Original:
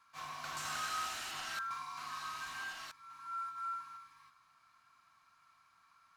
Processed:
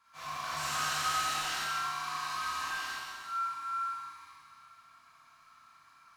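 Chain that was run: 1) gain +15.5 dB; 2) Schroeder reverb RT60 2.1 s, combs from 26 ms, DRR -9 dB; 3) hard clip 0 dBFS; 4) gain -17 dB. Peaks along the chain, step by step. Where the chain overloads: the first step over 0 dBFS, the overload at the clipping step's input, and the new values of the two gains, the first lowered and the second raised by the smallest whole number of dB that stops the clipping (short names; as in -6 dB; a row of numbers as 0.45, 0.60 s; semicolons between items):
-11.5, -2.5, -2.5, -19.5 dBFS; no overload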